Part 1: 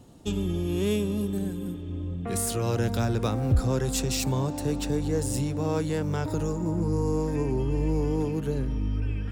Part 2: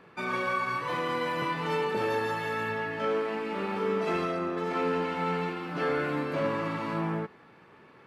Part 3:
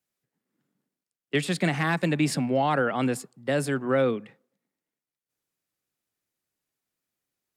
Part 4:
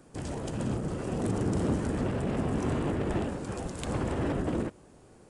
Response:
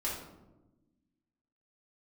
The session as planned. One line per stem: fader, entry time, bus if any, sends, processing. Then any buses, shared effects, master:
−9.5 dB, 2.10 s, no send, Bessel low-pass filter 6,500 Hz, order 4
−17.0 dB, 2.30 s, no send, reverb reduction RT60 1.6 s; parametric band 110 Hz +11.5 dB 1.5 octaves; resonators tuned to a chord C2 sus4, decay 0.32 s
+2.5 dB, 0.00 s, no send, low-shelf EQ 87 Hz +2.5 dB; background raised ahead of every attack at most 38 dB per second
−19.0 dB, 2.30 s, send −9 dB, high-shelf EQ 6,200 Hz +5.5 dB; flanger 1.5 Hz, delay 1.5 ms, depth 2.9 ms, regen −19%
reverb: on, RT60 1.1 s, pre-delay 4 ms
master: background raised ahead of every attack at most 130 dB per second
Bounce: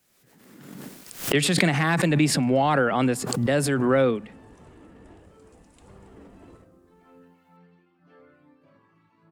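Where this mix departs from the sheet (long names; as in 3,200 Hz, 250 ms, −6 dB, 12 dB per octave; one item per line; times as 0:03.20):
stem 1: muted
stem 4: entry 2.30 s → 1.95 s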